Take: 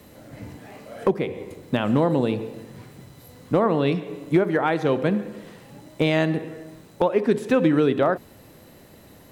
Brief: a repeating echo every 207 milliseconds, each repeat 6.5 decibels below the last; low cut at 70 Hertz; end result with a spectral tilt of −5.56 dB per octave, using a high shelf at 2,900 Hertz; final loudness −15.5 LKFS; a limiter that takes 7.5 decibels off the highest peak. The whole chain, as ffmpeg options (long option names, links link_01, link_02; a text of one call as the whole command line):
ffmpeg -i in.wav -af "highpass=70,highshelf=frequency=2900:gain=6.5,alimiter=limit=-14dB:level=0:latency=1,aecho=1:1:207|414|621|828|1035|1242:0.473|0.222|0.105|0.0491|0.0231|0.0109,volume=10dB" out.wav